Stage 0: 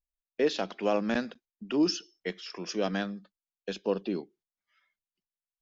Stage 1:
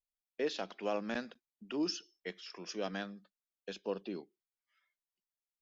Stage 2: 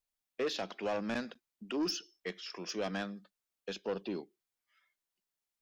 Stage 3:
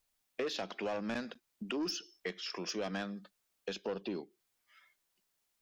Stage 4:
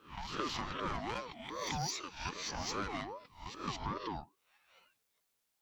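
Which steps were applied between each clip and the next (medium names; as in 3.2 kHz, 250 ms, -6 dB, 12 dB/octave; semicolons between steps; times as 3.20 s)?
bass shelf 360 Hz -5 dB; trim -6.5 dB
saturation -32.5 dBFS, distortion -12 dB; trim +4.5 dB
compression 2.5:1, threshold -49 dBFS, peak gain reduction 12 dB; trim +9 dB
reverse spectral sustain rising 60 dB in 0.42 s; reverse echo 218 ms -6 dB; ring modulator with a swept carrier 630 Hz, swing 30%, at 2.5 Hz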